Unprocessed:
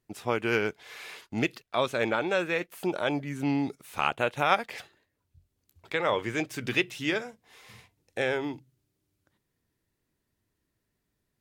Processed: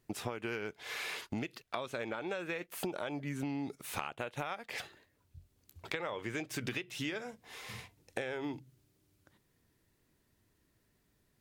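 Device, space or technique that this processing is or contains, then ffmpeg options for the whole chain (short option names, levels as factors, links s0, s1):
serial compression, leveller first: -af "acompressor=threshold=0.0355:ratio=3,acompressor=threshold=0.00891:ratio=6,volume=1.88"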